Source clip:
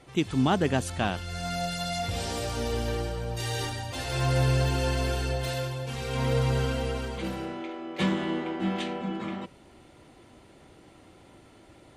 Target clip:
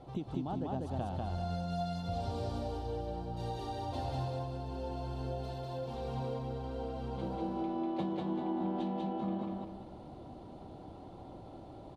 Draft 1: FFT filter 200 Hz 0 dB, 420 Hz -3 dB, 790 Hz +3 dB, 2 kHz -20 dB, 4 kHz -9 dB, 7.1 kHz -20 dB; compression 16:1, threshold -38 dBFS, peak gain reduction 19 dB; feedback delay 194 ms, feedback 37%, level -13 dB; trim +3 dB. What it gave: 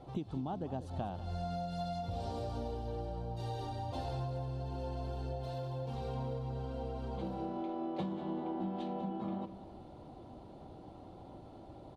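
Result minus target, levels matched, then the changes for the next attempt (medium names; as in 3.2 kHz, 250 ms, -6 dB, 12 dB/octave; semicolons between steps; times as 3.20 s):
echo-to-direct -11.5 dB
change: feedback delay 194 ms, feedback 37%, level -1.5 dB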